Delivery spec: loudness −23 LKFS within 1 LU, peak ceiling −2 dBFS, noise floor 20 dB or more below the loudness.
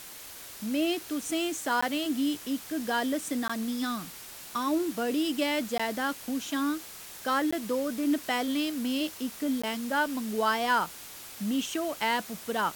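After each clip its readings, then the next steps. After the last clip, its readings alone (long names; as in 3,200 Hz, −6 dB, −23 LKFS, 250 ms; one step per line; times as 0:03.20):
number of dropouts 5; longest dropout 15 ms; background noise floor −45 dBFS; target noise floor −50 dBFS; integrated loudness −30.0 LKFS; sample peak −14.0 dBFS; target loudness −23.0 LKFS
→ repair the gap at 0:01.81/0:03.48/0:05.78/0:07.51/0:09.62, 15 ms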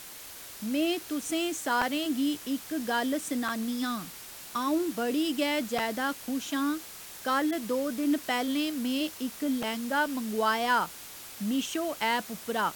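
number of dropouts 0; background noise floor −45 dBFS; target noise floor −50 dBFS
→ noise reduction from a noise print 6 dB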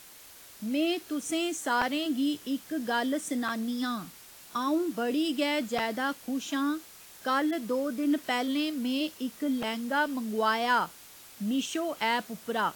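background noise floor −51 dBFS; integrated loudness −30.0 LKFS; sample peak −14.0 dBFS; target loudness −23.0 LKFS
→ level +7 dB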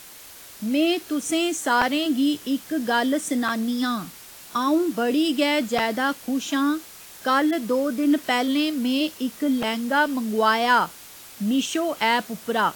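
integrated loudness −23.0 LKFS; sample peak −7.0 dBFS; background noise floor −44 dBFS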